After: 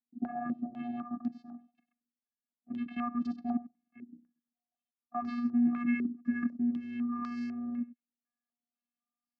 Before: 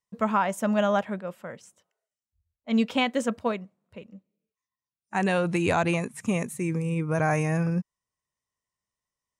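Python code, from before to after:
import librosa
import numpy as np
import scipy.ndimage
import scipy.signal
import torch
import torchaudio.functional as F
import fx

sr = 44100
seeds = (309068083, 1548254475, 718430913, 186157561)

y = fx.pitch_glide(x, sr, semitones=-11.5, runs='ending unshifted')
y = fx.low_shelf(y, sr, hz=350.0, db=3.0)
y = fx.level_steps(y, sr, step_db=16)
y = fx.spec_box(y, sr, start_s=5.19, length_s=2.78, low_hz=340.0, high_hz=1000.0, gain_db=-27)
y = fx.vocoder(y, sr, bands=8, carrier='square', carrier_hz=240.0)
y = y + 10.0 ** (-17.0 / 20.0) * np.pad(y, (int(96 * sr / 1000.0), 0))[:len(y)]
y = fx.filter_held_lowpass(y, sr, hz=4.0, low_hz=400.0, high_hz=4600.0)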